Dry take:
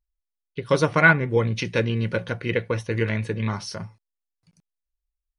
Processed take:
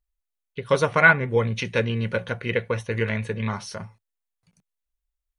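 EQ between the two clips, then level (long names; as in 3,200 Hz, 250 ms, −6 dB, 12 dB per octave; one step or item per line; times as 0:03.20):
thirty-one-band graphic EQ 100 Hz −4 dB, 160 Hz −6 dB, 315 Hz −10 dB, 5,000 Hz −8 dB
+1.0 dB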